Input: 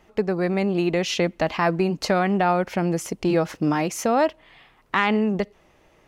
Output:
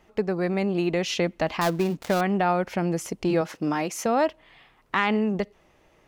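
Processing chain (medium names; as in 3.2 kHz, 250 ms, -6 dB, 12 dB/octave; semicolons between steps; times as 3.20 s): 1.61–2.21 s: dead-time distortion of 0.13 ms; 3.41–4.06 s: high-pass 210 Hz 6 dB/octave; trim -2.5 dB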